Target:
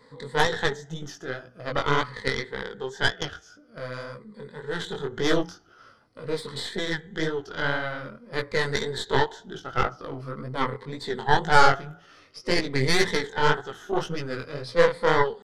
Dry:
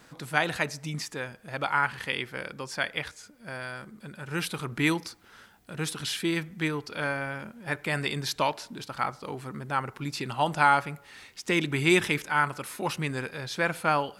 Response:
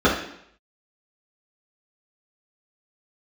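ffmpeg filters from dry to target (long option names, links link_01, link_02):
-af "afftfilt=real='re*pow(10,13/40*sin(2*PI*(0.96*log(max(b,1)*sr/1024/100)/log(2)-(-0.51)*(pts-256)/sr)))':imag='im*pow(10,13/40*sin(2*PI*(0.96*log(max(b,1)*sr/1024/100)/log(2)-(-0.51)*(pts-256)/sr)))':win_size=1024:overlap=0.75,flanger=delay=7.1:depth=2.2:regen=-86:speed=0.23:shape=triangular,atempo=0.92,lowpass=4500,bandreject=frequency=60:width_type=h:width=6,bandreject=frequency=120:width_type=h:width=6,bandreject=frequency=180:width_type=h:width=6,bandreject=frequency=240:width_type=h:width=6,bandreject=frequency=300:width_type=h:width=6,aeval=exprs='0.299*(cos(1*acos(clip(val(0)/0.299,-1,1)))-cos(1*PI/2))+0.106*(cos(2*acos(clip(val(0)/0.299,-1,1)))-cos(2*PI/2))+0.0168*(cos(3*acos(clip(val(0)/0.299,-1,1)))-cos(3*PI/2))+0.00299*(cos(5*acos(clip(val(0)/0.299,-1,1)))-cos(5*PI/2))+0.0596*(cos(6*acos(clip(val(0)/0.299,-1,1)))-cos(6*PI/2))':channel_layout=same,adynamicequalizer=threshold=0.00794:dfrequency=320:dqfactor=1.7:tfrequency=320:tqfactor=1.7:attack=5:release=100:ratio=0.375:range=1.5:mode=cutabove:tftype=bell,flanger=delay=16:depth=7.1:speed=1.9,superequalizer=7b=2.24:12b=0.282,volume=7dB"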